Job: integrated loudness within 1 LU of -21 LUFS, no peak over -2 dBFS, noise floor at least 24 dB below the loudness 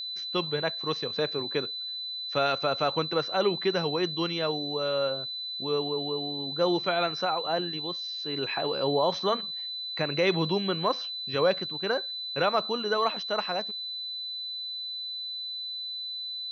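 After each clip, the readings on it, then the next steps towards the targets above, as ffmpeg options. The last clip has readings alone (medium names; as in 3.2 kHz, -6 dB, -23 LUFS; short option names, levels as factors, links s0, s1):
steady tone 4 kHz; tone level -33 dBFS; loudness -28.5 LUFS; peak level -12.5 dBFS; loudness target -21.0 LUFS
-> -af "bandreject=f=4000:w=30"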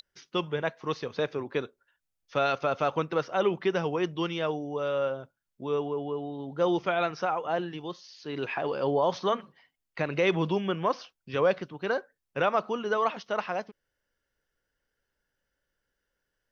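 steady tone not found; loudness -30.0 LUFS; peak level -13.0 dBFS; loudness target -21.0 LUFS
-> -af "volume=2.82"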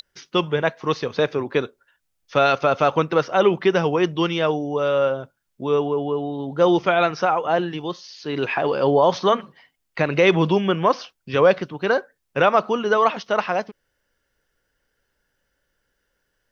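loudness -21.0 LUFS; peak level -4.0 dBFS; noise floor -74 dBFS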